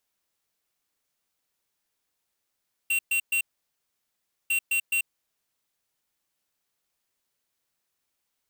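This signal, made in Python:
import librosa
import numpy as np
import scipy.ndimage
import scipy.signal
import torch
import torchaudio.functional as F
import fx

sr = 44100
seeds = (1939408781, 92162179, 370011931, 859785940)

y = fx.beep_pattern(sr, wave='square', hz=2740.0, on_s=0.09, off_s=0.12, beeps=3, pause_s=1.09, groups=2, level_db=-24.5)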